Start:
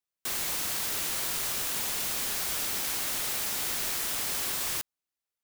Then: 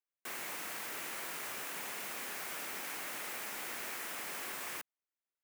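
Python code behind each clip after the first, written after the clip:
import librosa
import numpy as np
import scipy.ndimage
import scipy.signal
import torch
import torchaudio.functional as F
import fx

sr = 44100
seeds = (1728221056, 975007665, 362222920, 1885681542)

y = scipy.signal.sosfilt(scipy.signal.butter(2, 220.0, 'highpass', fs=sr, output='sos'), x)
y = fx.high_shelf_res(y, sr, hz=2900.0, db=-7.0, q=1.5)
y = y * librosa.db_to_amplitude(-5.5)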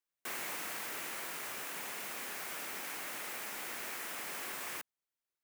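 y = fx.rider(x, sr, range_db=10, speed_s=2.0)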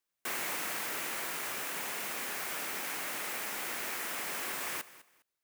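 y = fx.echo_feedback(x, sr, ms=204, feedback_pct=23, wet_db=-17.5)
y = y * librosa.db_to_amplitude(4.5)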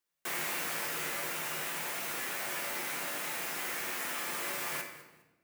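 y = fx.comb_fb(x, sr, f0_hz=52.0, decay_s=0.46, harmonics='odd', damping=0.0, mix_pct=70)
y = fx.room_shoebox(y, sr, seeds[0], volume_m3=640.0, walls='mixed', distance_m=0.81)
y = y * librosa.db_to_amplitude(7.0)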